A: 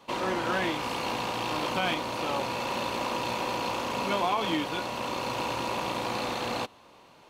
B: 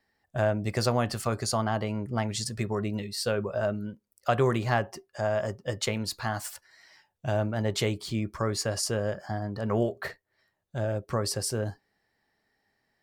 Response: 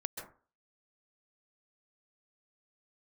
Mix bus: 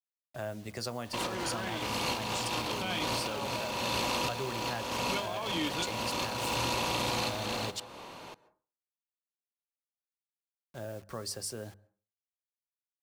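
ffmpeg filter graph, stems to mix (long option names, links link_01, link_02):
-filter_complex "[0:a]bandreject=frequency=50:width_type=h:width=6,bandreject=frequency=100:width_type=h:width=6,bandreject=frequency=150:width_type=h:width=6,bandreject=frequency=200:width_type=h:width=6,alimiter=level_in=2.5dB:limit=-24dB:level=0:latency=1:release=14,volume=-2.5dB,acontrast=89,adelay=1050,volume=1.5dB,asplit=2[link_01][link_02];[link_02]volume=-15.5dB[link_03];[1:a]equalizer=frequency=120:width_type=o:width=0.68:gain=-8.5,acrusher=bits=7:mix=0:aa=0.000001,bandreject=frequency=50:width_type=h:width=6,bandreject=frequency=100:width_type=h:width=6,bandreject=frequency=150:width_type=h:width=6,bandreject=frequency=200:width_type=h:width=6,volume=-6.5dB,asplit=3[link_04][link_05][link_06];[link_04]atrim=end=7.8,asetpts=PTS-STARTPTS,afade=type=out:start_time=7.796:duration=0.004:curve=hsin[link_07];[link_05]atrim=start=7.8:end=10.59,asetpts=PTS-STARTPTS,volume=0[link_08];[link_06]atrim=start=10.59,asetpts=PTS-STARTPTS,afade=type=in:duration=0.004:curve=hsin[link_09];[link_07][link_08][link_09]concat=n=3:v=0:a=1,asplit=3[link_10][link_11][link_12];[link_11]volume=-22.5dB[link_13];[link_12]apad=whole_len=367897[link_14];[link_01][link_14]sidechaincompress=threshold=-38dB:ratio=8:attack=5.2:release=277[link_15];[2:a]atrim=start_sample=2205[link_16];[link_03][link_13]amix=inputs=2:normalize=0[link_17];[link_17][link_16]afir=irnorm=-1:irlink=0[link_18];[link_15][link_10][link_18]amix=inputs=3:normalize=0,acrossover=split=150|3000[link_19][link_20][link_21];[link_20]acompressor=threshold=-46dB:ratio=1.5[link_22];[link_19][link_22][link_21]amix=inputs=3:normalize=0"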